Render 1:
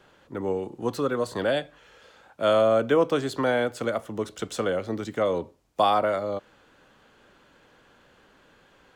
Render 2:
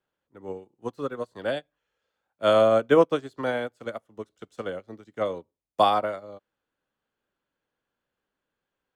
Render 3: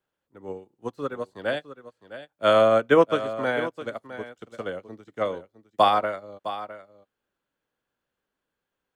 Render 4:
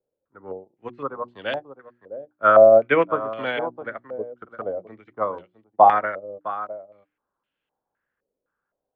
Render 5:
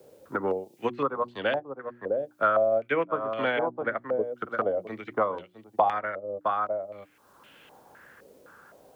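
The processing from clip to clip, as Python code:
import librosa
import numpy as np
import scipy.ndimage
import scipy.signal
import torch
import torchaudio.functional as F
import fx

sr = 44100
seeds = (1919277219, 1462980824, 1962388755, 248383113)

y1 = fx.upward_expand(x, sr, threshold_db=-38.0, expansion=2.5)
y1 = F.gain(torch.from_numpy(y1), 4.0).numpy()
y2 = fx.dynamic_eq(y1, sr, hz=1800.0, q=1.0, threshold_db=-38.0, ratio=4.0, max_db=5)
y2 = y2 + 10.0 ** (-13.0 / 20.0) * np.pad(y2, (int(659 * sr / 1000.0), 0))[:len(y2)]
y3 = fx.hum_notches(y2, sr, base_hz=60, count=6)
y3 = fx.filter_held_lowpass(y3, sr, hz=3.9, low_hz=510.0, high_hz=2900.0)
y3 = F.gain(torch.from_numpy(y3), -2.5).numpy()
y4 = scipy.signal.sosfilt(scipy.signal.butter(2, 73.0, 'highpass', fs=sr, output='sos'), y3)
y4 = fx.band_squash(y4, sr, depth_pct=100)
y4 = F.gain(torch.from_numpy(y4), -1.0).numpy()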